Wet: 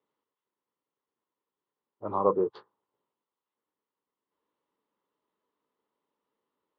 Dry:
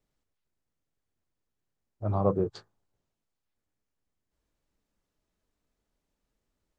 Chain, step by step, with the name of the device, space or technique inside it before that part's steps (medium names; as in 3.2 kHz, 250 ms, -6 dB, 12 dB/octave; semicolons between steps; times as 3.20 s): phone earpiece (cabinet simulation 350–3100 Hz, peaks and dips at 440 Hz +3 dB, 680 Hz -9 dB, 1 kHz +8 dB, 1.6 kHz -7 dB, 2.4 kHz -9 dB); trim +3.5 dB